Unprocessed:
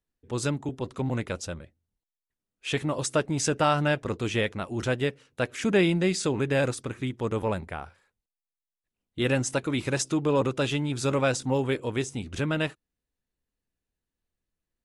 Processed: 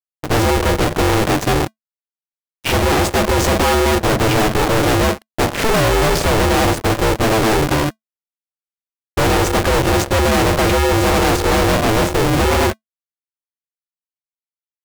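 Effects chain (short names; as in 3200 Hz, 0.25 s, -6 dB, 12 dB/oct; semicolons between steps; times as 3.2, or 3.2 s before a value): median filter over 41 samples; fuzz box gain 48 dB, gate -56 dBFS; polarity switched at an audio rate 220 Hz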